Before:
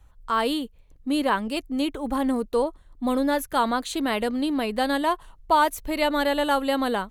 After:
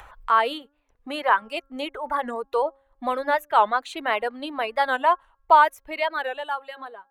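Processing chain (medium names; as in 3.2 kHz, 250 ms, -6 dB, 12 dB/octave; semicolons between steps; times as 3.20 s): fade out at the end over 1.59 s; three-band isolator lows -22 dB, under 550 Hz, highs -17 dB, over 2.7 kHz; de-hum 272.6 Hz, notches 6; reverb removal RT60 1.7 s; 0.62–1.42 s: bass shelf 240 Hz -7 dB; in parallel at +1 dB: upward compressor, threshold -31 dBFS; on the sum: warped record 45 rpm, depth 160 cents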